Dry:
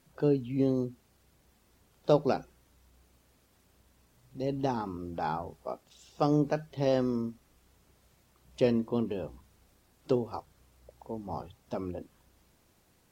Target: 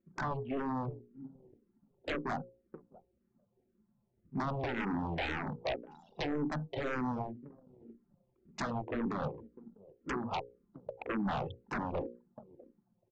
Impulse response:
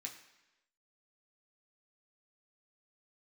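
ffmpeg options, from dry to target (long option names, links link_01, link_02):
-filter_complex "[0:a]acompressor=threshold=-37dB:ratio=16,highpass=frequency=120:width=0.5412,highpass=frequency=120:width=1.3066,bass=frequency=250:gain=1,treble=frequency=4000:gain=-13,aecho=1:1:650|1300:0.0944|0.0255,anlmdn=0.000631,bandreject=frequency=60:width_type=h:width=6,bandreject=frequency=120:width_type=h:width=6,bandreject=frequency=180:width_type=h:width=6,bandreject=frequency=240:width_type=h:width=6,bandreject=frequency=300:width_type=h:width=6,bandreject=frequency=360:width_type=h:width=6,bandreject=frequency=420:width_type=h:width=6,bandreject=frequency=480:width_type=h:width=6,bandreject=frequency=540:width_type=h:width=6,aresample=16000,aeval=exprs='0.0398*sin(PI/2*4.47*val(0)/0.0398)':channel_layout=same,aresample=44100,asplit=2[link_01][link_02];[link_02]afreqshift=-1.9[link_03];[link_01][link_03]amix=inputs=2:normalize=1"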